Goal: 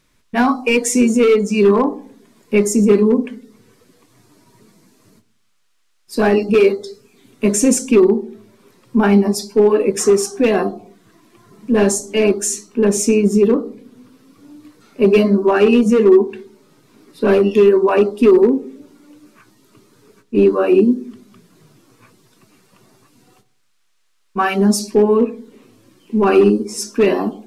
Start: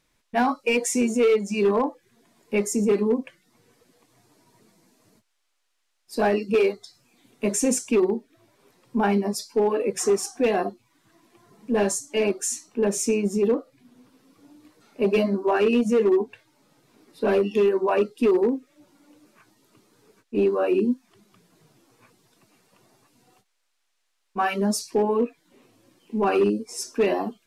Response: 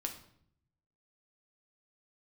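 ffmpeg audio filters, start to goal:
-filter_complex "[0:a]asplit=2[a][b];[b]lowpass=f=1.1k:w=0.5412,lowpass=f=1.1k:w=1.3066[c];[1:a]atrim=start_sample=2205,asetrate=57330,aresample=44100,lowpass=f=1.7k:w=0.5412,lowpass=f=1.7k:w=1.3066[d];[c][d]afir=irnorm=-1:irlink=0,volume=-2.5dB[e];[a][e]amix=inputs=2:normalize=0,volume=7dB"

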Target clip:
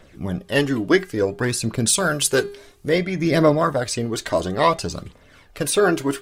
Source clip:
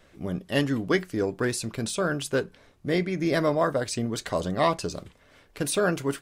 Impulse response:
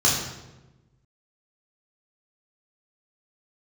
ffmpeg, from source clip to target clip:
-filter_complex "[0:a]aphaser=in_gain=1:out_gain=1:delay=3.3:decay=0.44:speed=0.58:type=triangular,asettb=1/sr,asplit=3[a][b][c];[a]atrim=end=1.874[d];[b]atrim=start=1.87:end=2.89,asetpts=PTS-STARTPTS,afade=t=in:d=0.004:c=qsin,afade=t=out:st=1.016:d=0.004:c=qsin,equalizer=f=12k:t=o:w=2.4:g=11.5[e];[c]atrim=start=2.886[f];[d][e]acrossfade=d=0.004:c1=hsin:c2=qsin[g];[g][f]acrossfade=d=0.004:c1=qsin:c2=hsin,bandreject=f=404.1:t=h:w=4,bandreject=f=808.2:t=h:w=4,bandreject=f=1.2123k:t=h:w=4,bandreject=f=1.6164k:t=h:w=4,bandreject=f=2.0205k:t=h:w=4,bandreject=f=2.4246k:t=h:w=4,bandreject=f=2.8287k:t=h:w=4,bandreject=f=3.2328k:t=h:w=4,bandreject=f=3.6369k:t=h:w=4,bandreject=f=4.041k:t=h:w=4,bandreject=f=4.4451k:t=h:w=4,volume=5dB"

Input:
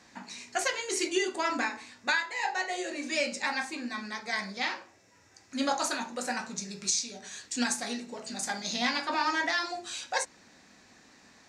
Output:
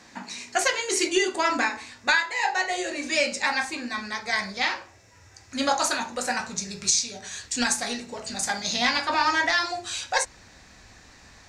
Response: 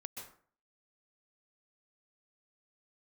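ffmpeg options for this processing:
-af "asubboost=boost=9.5:cutoff=74,volume=6.5dB"

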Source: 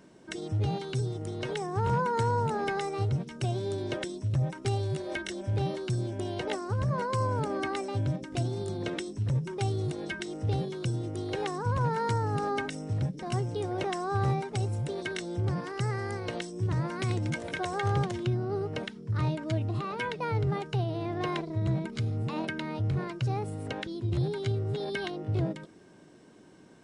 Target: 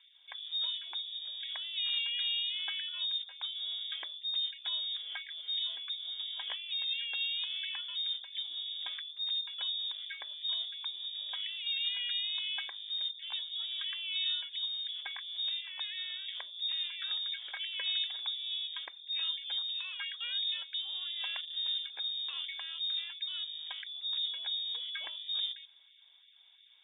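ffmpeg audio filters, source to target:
-af "bandreject=f=60:t=h:w=6,bandreject=f=120:t=h:w=6,lowpass=f=3.2k:t=q:w=0.5098,lowpass=f=3.2k:t=q:w=0.6013,lowpass=f=3.2k:t=q:w=0.9,lowpass=f=3.2k:t=q:w=2.563,afreqshift=-3800,afftfilt=real='re*gte(b*sr/1024,270*pow(1800/270,0.5+0.5*sin(2*PI*2.9*pts/sr)))':imag='im*gte(b*sr/1024,270*pow(1800/270,0.5+0.5*sin(2*PI*2.9*pts/sr)))':win_size=1024:overlap=0.75,volume=-6.5dB"

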